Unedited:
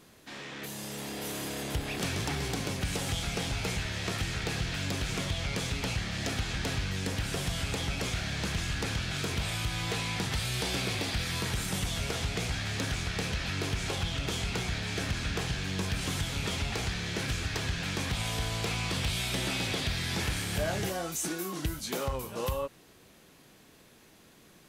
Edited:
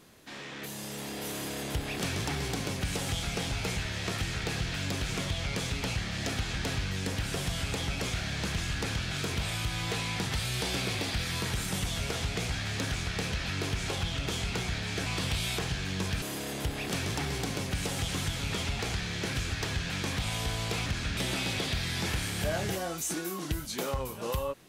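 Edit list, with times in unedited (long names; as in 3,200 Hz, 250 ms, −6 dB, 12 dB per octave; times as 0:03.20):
0:01.32–0:03.18: duplicate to 0:16.01
0:15.06–0:15.37: swap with 0:18.79–0:19.31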